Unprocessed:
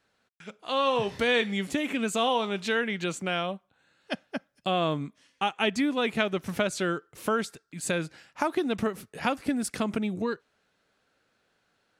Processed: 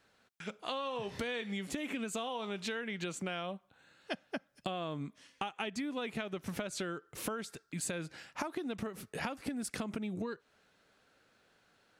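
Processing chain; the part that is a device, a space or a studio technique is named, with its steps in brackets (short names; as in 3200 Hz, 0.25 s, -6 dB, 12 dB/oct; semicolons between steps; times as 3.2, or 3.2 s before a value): serial compression, leveller first (compressor 2:1, threshold -28 dBFS, peak gain reduction 5 dB; compressor 6:1, threshold -38 dBFS, peak gain reduction 13 dB); gain +2.5 dB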